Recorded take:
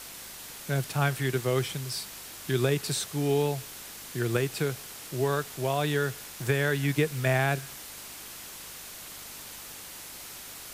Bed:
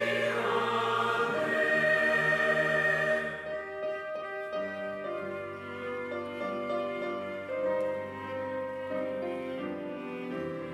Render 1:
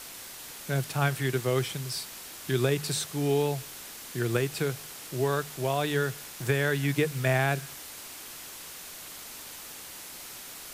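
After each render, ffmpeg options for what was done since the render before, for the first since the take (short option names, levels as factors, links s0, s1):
-af "bandreject=f=50:t=h:w=4,bandreject=f=100:t=h:w=4,bandreject=f=150:t=h:w=4,bandreject=f=200:t=h:w=4"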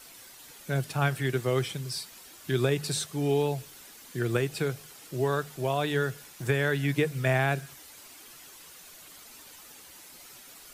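-af "afftdn=nr=9:nf=-44"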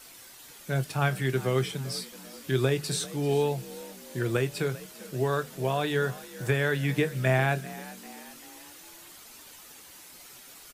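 -filter_complex "[0:a]asplit=2[s0][s1];[s1]adelay=23,volume=0.237[s2];[s0][s2]amix=inputs=2:normalize=0,asplit=5[s3][s4][s5][s6][s7];[s4]adelay=393,afreqshift=51,volume=0.126[s8];[s5]adelay=786,afreqshift=102,volume=0.0646[s9];[s6]adelay=1179,afreqshift=153,volume=0.0327[s10];[s7]adelay=1572,afreqshift=204,volume=0.0168[s11];[s3][s8][s9][s10][s11]amix=inputs=5:normalize=0"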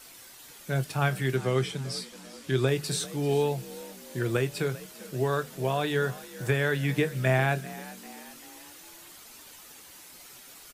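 -filter_complex "[0:a]asettb=1/sr,asplit=3[s0][s1][s2];[s0]atrim=end=1.364[s3];[s1]atrim=start=1.36:end=2.68,asetpts=PTS-STARTPTS,afade=t=in:d=0.004:c=qsin,afade=t=out:st=1.316:d=0.004:c=qsin,lowpass=9800[s4];[s2]atrim=start=2.676[s5];[s3][s4]acrossfade=d=0.004:c1=hsin:c2=qsin[s6];[s6][s5]acrossfade=d=0.004:c1=qsin:c2=hsin"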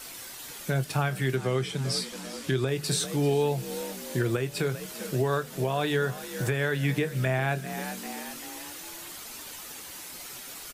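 -filter_complex "[0:a]asplit=2[s0][s1];[s1]acompressor=threshold=0.02:ratio=6,volume=1.33[s2];[s0][s2]amix=inputs=2:normalize=0,alimiter=limit=0.15:level=0:latency=1:release=314"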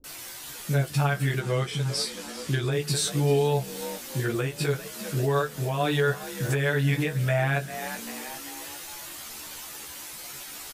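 -filter_complex "[0:a]asplit=2[s0][s1];[s1]adelay=14,volume=0.708[s2];[s0][s2]amix=inputs=2:normalize=0,acrossover=split=320[s3][s4];[s4]adelay=40[s5];[s3][s5]amix=inputs=2:normalize=0"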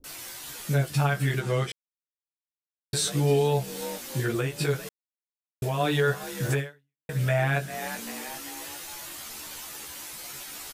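-filter_complex "[0:a]asplit=6[s0][s1][s2][s3][s4][s5];[s0]atrim=end=1.72,asetpts=PTS-STARTPTS,afade=t=out:st=1.716:d=0.004:c=hsin[s6];[s1]atrim=start=1.72:end=2.93,asetpts=PTS-STARTPTS,volume=0[s7];[s2]atrim=start=2.93:end=4.89,asetpts=PTS-STARTPTS,afade=t=in:d=0.004:c=hsin,afade=t=out:st=1.956:d=0.004:c=hsin[s8];[s3]atrim=start=4.89:end=5.62,asetpts=PTS-STARTPTS,volume=0[s9];[s4]atrim=start=5.62:end=7.09,asetpts=PTS-STARTPTS,afade=t=in:d=0.004:c=hsin,afade=t=out:st=0.97:d=0.5:c=exp[s10];[s5]atrim=start=7.09,asetpts=PTS-STARTPTS,afade=t=in:d=0.004:c=hsin[s11];[s6][s7][s8][s9][s10][s11]concat=n=6:v=0:a=1"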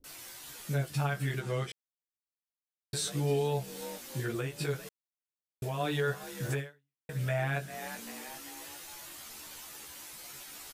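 -af "volume=0.447"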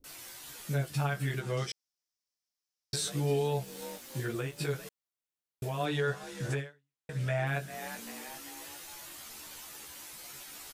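-filter_complex "[0:a]asettb=1/sr,asplit=3[s0][s1][s2];[s0]atrim=end=1.574[s3];[s1]atrim=start=1.57:end=2.96,asetpts=PTS-STARTPTS,afade=t=in:d=0.004:c=qsin,afade=t=out:st=1.386:d=0.004:c=qsin,equalizer=f=5400:t=o:w=0.61:g=14.5[s4];[s2]atrim=start=2.956[s5];[s3][s4]acrossfade=d=0.004:c1=hsin:c2=qsin[s6];[s6][s5]acrossfade=d=0.004:c1=qsin:c2=hsin,asettb=1/sr,asplit=3[s7][s8][s9];[s7]atrim=end=3.644[s10];[s8]atrim=start=3.64:end=4.6,asetpts=PTS-STARTPTS,afade=t=in:d=0.004:c=qsin,afade=t=out:st=0.956:d=0.004:c=qsin,aeval=exprs='sgn(val(0))*max(abs(val(0))-0.0015,0)':c=same[s11];[s9]atrim=start=4.596[s12];[s10][s11]acrossfade=d=0.004:c1=hsin:c2=qsin[s13];[s13][s12]acrossfade=d=0.004:c1=qsin:c2=hsin,asettb=1/sr,asplit=3[s14][s15][s16];[s14]atrim=end=5.854[s17];[s15]atrim=start=5.85:end=7.47,asetpts=PTS-STARTPTS,afade=t=in:d=0.004:c=qsin,afade=t=out:st=1.616:d=0.004:c=qsin,lowpass=8600[s18];[s16]atrim=start=7.466[s19];[s17][s18]acrossfade=d=0.004:c1=hsin:c2=qsin[s20];[s20][s19]acrossfade=d=0.004:c1=qsin:c2=hsin"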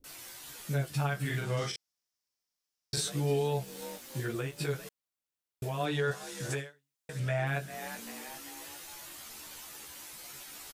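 -filter_complex "[0:a]asplit=3[s0][s1][s2];[s0]afade=t=out:st=1.24:d=0.02[s3];[s1]asplit=2[s4][s5];[s5]adelay=41,volume=0.75[s6];[s4][s6]amix=inputs=2:normalize=0,afade=t=in:st=1.24:d=0.02,afade=t=out:st=3:d=0.02[s7];[s2]afade=t=in:st=3:d=0.02[s8];[s3][s7][s8]amix=inputs=3:normalize=0,asettb=1/sr,asplit=3[s9][s10][s11];[s9]atrim=end=6.114[s12];[s10]atrim=start=6.11:end=7.2,asetpts=PTS-STARTPTS,afade=t=in:d=0.004:c=qsin,afade=t=out:st=1.086:d=0.004:c=qsin,bass=f=250:g=-4,treble=f=4000:g=7[s13];[s11]atrim=start=7.196[s14];[s12][s13]acrossfade=d=0.004:c1=hsin:c2=qsin[s15];[s15][s14]acrossfade=d=0.004:c1=qsin:c2=hsin"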